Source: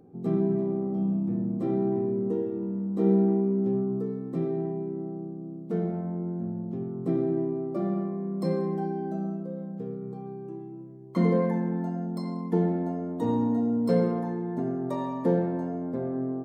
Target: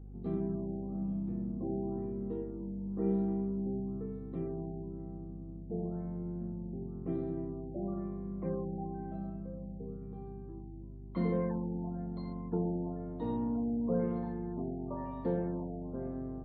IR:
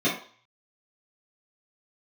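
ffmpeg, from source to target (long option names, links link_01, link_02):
-filter_complex "[0:a]aeval=exprs='val(0)+0.0141*(sin(2*PI*50*n/s)+sin(2*PI*2*50*n/s)/2+sin(2*PI*3*50*n/s)/3+sin(2*PI*4*50*n/s)/4+sin(2*PI*5*50*n/s)/5)':channel_layout=same,asplit=2[link_01][link_02];[1:a]atrim=start_sample=2205,highshelf=frequency=4500:gain=10,adelay=113[link_03];[link_02][link_03]afir=irnorm=-1:irlink=0,volume=-33.5dB[link_04];[link_01][link_04]amix=inputs=2:normalize=0,afftfilt=real='re*lt(b*sr/1024,880*pow(4700/880,0.5+0.5*sin(2*PI*1*pts/sr)))':imag='im*lt(b*sr/1024,880*pow(4700/880,0.5+0.5*sin(2*PI*1*pts/sr)))':win_size=1024:overlap=0.75,volume=-9dB"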